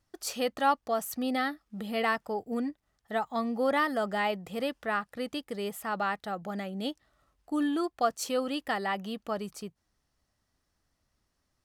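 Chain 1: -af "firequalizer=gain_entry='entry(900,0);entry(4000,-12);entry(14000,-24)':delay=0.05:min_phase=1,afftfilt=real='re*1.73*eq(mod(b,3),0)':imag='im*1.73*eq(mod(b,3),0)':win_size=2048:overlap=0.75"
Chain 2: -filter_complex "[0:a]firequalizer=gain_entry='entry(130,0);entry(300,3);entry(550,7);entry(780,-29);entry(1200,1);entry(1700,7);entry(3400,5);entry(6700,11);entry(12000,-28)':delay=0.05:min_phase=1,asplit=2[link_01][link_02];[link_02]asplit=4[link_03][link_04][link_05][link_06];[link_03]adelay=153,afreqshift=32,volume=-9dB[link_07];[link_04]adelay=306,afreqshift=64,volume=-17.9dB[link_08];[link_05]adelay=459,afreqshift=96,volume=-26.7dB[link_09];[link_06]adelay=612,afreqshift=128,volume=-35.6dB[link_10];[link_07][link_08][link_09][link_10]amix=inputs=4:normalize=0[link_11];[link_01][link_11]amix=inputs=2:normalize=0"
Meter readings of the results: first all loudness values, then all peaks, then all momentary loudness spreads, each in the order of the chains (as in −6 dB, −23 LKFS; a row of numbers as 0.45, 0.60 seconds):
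−34.5, −28.0 LKFS; −16.5, −11.5 dBFS; 10, 9 LU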